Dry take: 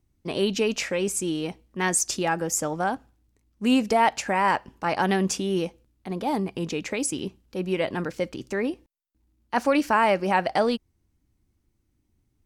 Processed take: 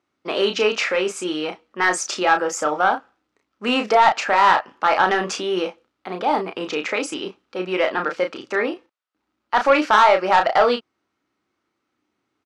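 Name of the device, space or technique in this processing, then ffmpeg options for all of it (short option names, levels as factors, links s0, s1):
intercom: -filter_complex "[0:a]highpass=460,lowpass=3900,equalizer=f=1300:t=o:w=0.34:g=9,asoftclip=type=tanh:threshold=0.178,asplit=2[s0][s1];[s1]adelay=33,volume=0.501[s2];[s0][s2]amix=inputs=2:normalize=0,volume=2.51"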